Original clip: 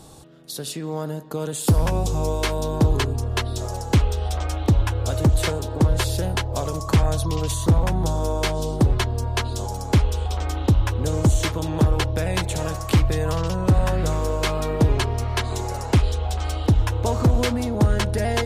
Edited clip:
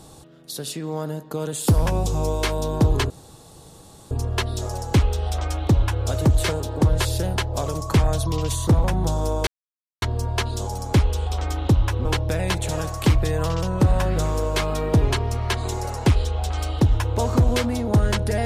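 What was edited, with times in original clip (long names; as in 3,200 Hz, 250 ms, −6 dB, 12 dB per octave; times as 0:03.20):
0:03.10: splice in room tone 1.01 s
0:08.46–0:09.01: silence
0:11.04–0:11.92: remove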